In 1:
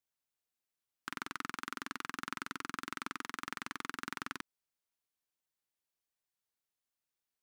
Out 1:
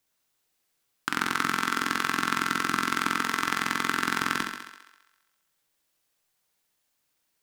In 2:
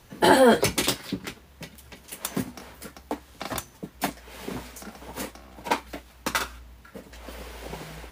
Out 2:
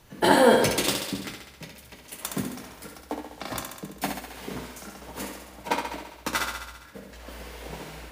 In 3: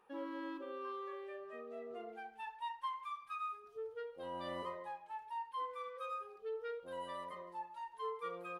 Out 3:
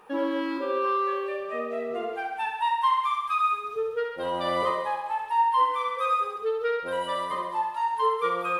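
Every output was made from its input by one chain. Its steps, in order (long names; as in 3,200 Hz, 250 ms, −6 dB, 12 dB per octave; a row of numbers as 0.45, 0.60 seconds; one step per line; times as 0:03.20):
feedback echo with a high-pass in the loop 67 ms, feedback 67%, high-pass 200 Hz, level −5.5 dB
rectangular room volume 260 cubic metres, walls furnished, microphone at 0.5 metres
loudness normalisation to −27 LKFS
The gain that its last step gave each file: +13.0, −2.0, +16.0 decibels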